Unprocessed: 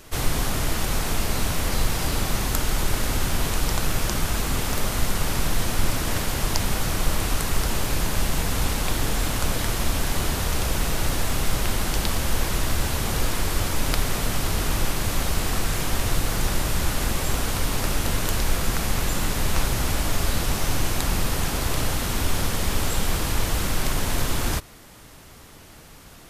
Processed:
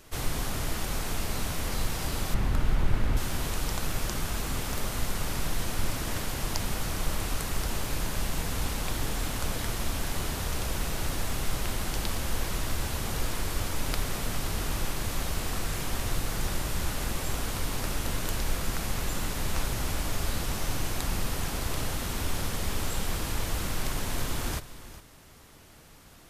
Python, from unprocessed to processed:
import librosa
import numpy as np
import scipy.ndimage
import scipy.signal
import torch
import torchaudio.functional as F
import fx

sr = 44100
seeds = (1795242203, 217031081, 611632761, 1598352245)

y = fx.bass_treble(x, sr, bass_db=7, treble_db=-14, at=(2.34, 3.17))
y = y + 10.0 ** (-15.0 / 20.0) * np.pad(y, (int(406 * sr / 1000.0), 0))[:len(y)]
y = y * librosa.db_to_amplitude(-7.0)